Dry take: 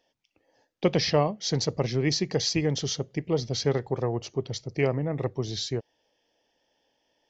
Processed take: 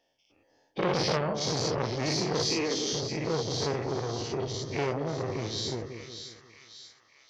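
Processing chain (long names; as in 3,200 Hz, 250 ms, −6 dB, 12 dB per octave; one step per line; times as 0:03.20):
every bin's largest magnitude spread in time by 120 ms
0:02.50–0:02.93: Butterworth high-pass 220 Hz 72 dB per octave
echo with a time of its own for lows and highs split 1,200 Hz, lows 179 ms, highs 590 ms, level −9.5 dB
saturating transformer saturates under 1,300 Hz
level −6 dB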